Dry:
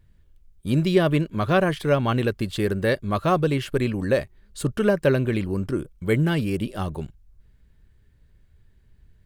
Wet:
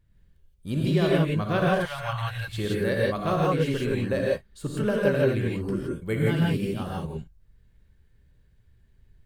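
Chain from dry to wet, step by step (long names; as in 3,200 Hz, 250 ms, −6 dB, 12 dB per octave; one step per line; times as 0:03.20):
0:01.68–0:02.48: Chebyshev band-stop filter 110–750 Hz, order 3
0:04.20–0:04.63: downward compressor 4 to 1, threshold −39 dBFS, peak gain reduction 8 dB
reverb whose tail is shaped and stops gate 190 ms rising, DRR −3.5 dB
level −7.5 dB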